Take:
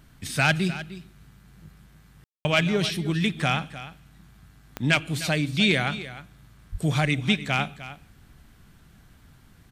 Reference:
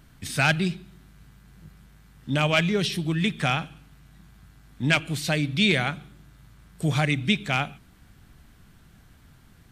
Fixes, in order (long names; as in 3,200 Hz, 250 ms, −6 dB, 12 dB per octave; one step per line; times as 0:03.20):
click removal
0:06.71–0:06.83: high-pass filter 140 Hz 24 dB per octave
ambience match 0:02.24–0:02.45
echo removal 304 ms −14.5 dB